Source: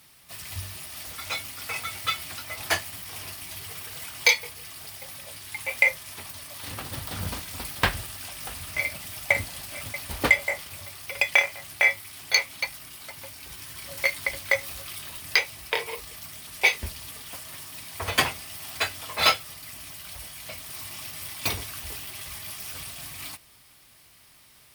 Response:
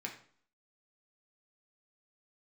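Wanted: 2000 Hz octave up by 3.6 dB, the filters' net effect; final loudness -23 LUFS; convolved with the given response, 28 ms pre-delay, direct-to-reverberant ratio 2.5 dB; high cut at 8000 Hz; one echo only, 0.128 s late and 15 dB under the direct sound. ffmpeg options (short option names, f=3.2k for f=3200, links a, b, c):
-filter_complex "[0:a]lowpass=8k,equalizer=f=2k:t=o:g=4,aecho=1:1:128:0.178,asplit=2[a][b];[1:a]atrim=start_sample=2205,adelay=28[c];[b][c]afir=irnorm=-1:irlink=0,volume=-2.5dB[d];[a][d]amix=inputs=2:normalize=0,volume=-2.5dB"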